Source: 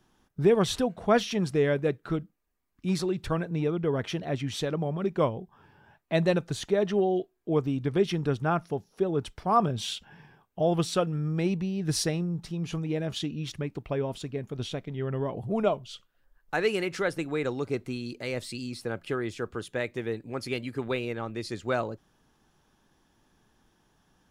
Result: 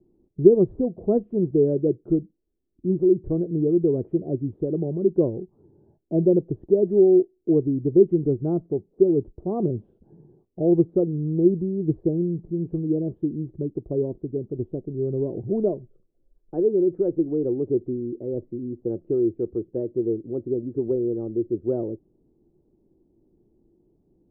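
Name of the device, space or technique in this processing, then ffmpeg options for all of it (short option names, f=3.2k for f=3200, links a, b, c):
under water: -af "lowpass=f=520:w=0.5412,lowpass=f=520:w=1.3066,equalizer=f=350:t=o:w=0.47:g=11.5,volume=2dB"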